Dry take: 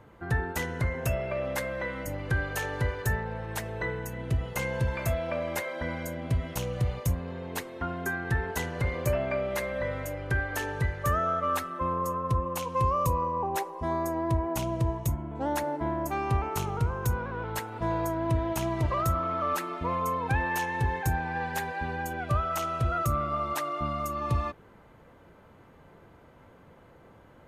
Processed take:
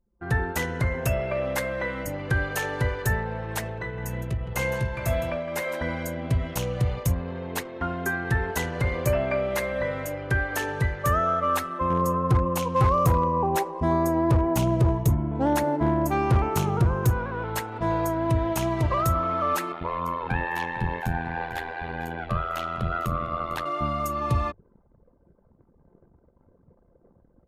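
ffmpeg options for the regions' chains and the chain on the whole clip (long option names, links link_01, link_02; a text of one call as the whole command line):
ffmpeg -i in.wav -filter_complex "[0:a]asettb=1/sr,asplit=3[link_01][link_02][link_03];[link_01]atrim=end=3.614[link_04];[link_02]atrim=start=3.61:end=5.79,asetpts=PTS-STARTPTS,afade=type=in:duration=0.004:curve=qsin,afade=type=out:start_time=2.176:duration=0.004:curve=qsin,tremolo=f=1.9:d=0.51,asplit=2[link_05][link_06];[link_06]adelay=17,volume=-12dB[link_07];[link_05][link_07]amix=inputs=2:normalize=0,atrim=end_sample=96138,aecho=1:1:48|163:0.119|0.251,atrim=end_sample=96138[link_08];[link_03]atrim=start=5.786[link_09];[link_04][link_08]acrossfade=duration=0.004:curve1=hsin:curve2=qsin[link_10];[link_10][link_09]acrossfade=duration=0.004:curve1=qsin:curve2=hsin,asettb=1/sr,asplit=3[link_11][link_12][link_13];[link_11]atrim=end=11.904[link_14];[link_12]atrim=start=11.9:end=17.11,asetpts=PTS-STARTPTS,afade=type=in:duration=0.004:curve=qsin,afade=type=out:start_time=5.206:duration=0.004:curve=qsin,equalizer=frequency=160:width_type=o:width=2.6:gain=7,asoftclip=type=hard:threshold=-18.5dB[link_15];[link_13]atrim=start=17.106[link_16];[link_14][link_15]acrossfade=duration=0.004:curve1=hsin:curve2=qsin[link_17];[link_17][link_16]acrossfade=duration=0.004:curve1=qsin:curve2=hsin,asettb=1/sr,asplit=3[link_18][link_19][link_20];[link_18]atrim=end=19.724[link_21];[link_19]atrim=start=19.72:end=23.66,asetpts=PTS-STARTPTS,afade=type=in:duration=0.004:curve=qsin,afade=type=out:start_time=3.936:duration=0.004:curve=qsin,highshelf=frequency=5000:width_type=q:width=1.5:gain=-8,tremolo=f=84:d=0.947,aecho=1:1:452:0.178,atrim=end_sample=173754[link_22];[link_20]atrim=start=23.656[link_23];[link_21][link_22]acrossfade=duration=0.004:curve1=hsin:curve2=qsin[link_24];[link_24][link_23]acrossfade=duration=0.004:curve1=qsin:curve2=hsin,dynaudnorm=framelen=140:gausssize=3:maxgain=7dB,anlmdn=0.398,bandreject=frequency=50:width_type=h:width=6,bandreject=frequency=100:width_type=h:width=6,volume=-3dB" out.wav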